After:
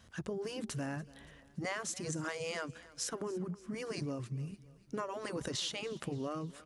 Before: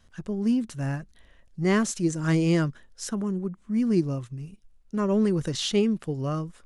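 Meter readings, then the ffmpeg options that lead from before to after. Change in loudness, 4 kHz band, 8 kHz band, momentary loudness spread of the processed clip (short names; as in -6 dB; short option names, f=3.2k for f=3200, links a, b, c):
-13.0 dB, -6.5 dB, -5.5 dB, 7 LU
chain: -filter_complex "[0:a]afftfilt=real='re*lt(hypot(re,im),0.316)':imag='im*lt(hypot(re,im),0.316)':win_size=1024:overlap=0.75,highpass=61,acompressor=threshold=-38dB:ratio=6,asplit=2[a][b];[b]aecho=0:1:286|572|858|1144:0.1|0.05|0.025|0.0125[c];[a][c]amix=inputs=2:normalize=0,volume=2.5dB"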